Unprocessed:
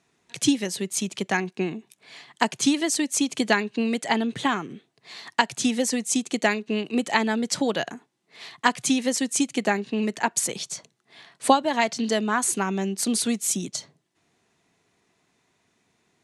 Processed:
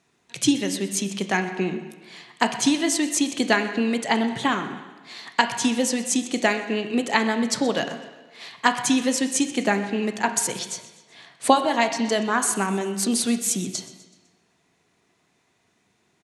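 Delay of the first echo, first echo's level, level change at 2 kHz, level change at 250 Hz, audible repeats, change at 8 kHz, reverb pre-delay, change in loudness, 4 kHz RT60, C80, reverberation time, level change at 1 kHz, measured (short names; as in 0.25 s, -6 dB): 0.126 s, -18.5 dB, +2.0 dB, +1.5 dB, 3, +1.0 dB, 17 ms, +1.5 dB, 1.1 s, 10.5 dB, 1.2 s, +1.5 dB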